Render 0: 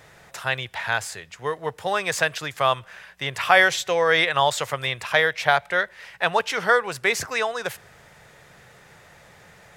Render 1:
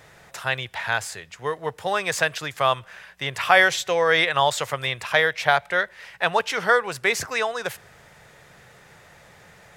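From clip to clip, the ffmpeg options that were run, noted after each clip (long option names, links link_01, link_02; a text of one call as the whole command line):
ffmpeg -i in.wav -af anull out.wav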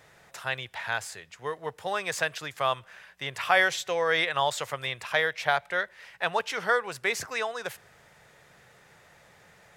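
ffmpeg -i in.wav -af "lowshelf=frequency=140:gain=-4,volume=-6dB" out.wav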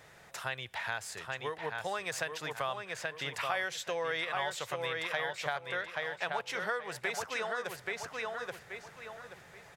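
ffmpeg -i in.wav -filter_complex "[0:a]asplit=2[link_01][link_02];[link_02]adelay=829,lowpass=frequency=4600:poles=1,volume=-5dB,asplit=2[link_03][link_04];[link_04]adelay=829,lowpass=frequency=4600:poles=1,volume=0.29,asplit=2[link_05][link_06];[link_06]adelay=829,lowpass=frequency=4600:poles=1,volume=0.29,asplit=2[link_07][link_08];[link_08]adelay=829,lowpass=frequency=4600:poles=1,volume=0.29[link_09];[link_01][link_03][link_05][link_07][link_09]amix=inputs=5:normalize=0,acompressor=threshold=-34dB:ratio=3" out.wav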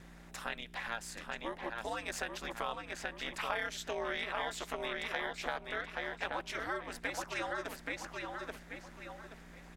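ffmpeg -i in.wav -af "aeval=exprs='val(0)+0.00282*(sin(2*PI*60*n/s)+sin(2*PI*2*60*n/s)/2+sin(2*PI*3*60*n/s)/3+sin(2*PI*4*60*n/s)/4+sin(2*PI*5*60*n/s)/5)':channel_layout=same,aeval=exprs='val(0)*sin(2*PI*110*n/s)':channel_layout=same" out.wav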